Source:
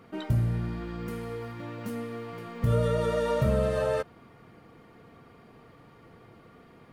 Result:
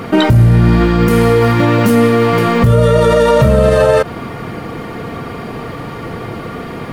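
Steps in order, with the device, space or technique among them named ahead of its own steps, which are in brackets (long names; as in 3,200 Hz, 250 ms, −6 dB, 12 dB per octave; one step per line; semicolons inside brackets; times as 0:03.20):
loud club master (downward compressor 2 to 1, threshold −28 dBFS, peak gain reduction 5 dB; hard clipping −20.5 dBFS, distortion −33 dB; boost into a limiter +29.5 dB)
level −1 dB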